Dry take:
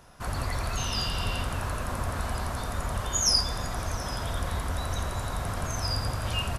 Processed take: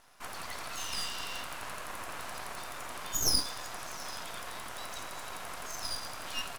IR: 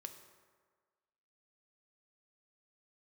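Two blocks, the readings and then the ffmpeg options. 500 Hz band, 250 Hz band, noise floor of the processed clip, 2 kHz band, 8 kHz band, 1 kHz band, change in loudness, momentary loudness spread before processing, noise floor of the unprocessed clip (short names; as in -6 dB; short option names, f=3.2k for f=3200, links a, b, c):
-9.5 dB, -11.5 dB, -43 dBFS, -4.5 dB, -4.5 dB, -7.0 dB, -6.5 dB, 8 LU, -34 dBFS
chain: -af "highpass=700,aeval=exprs='max(val(0),0)':c=same"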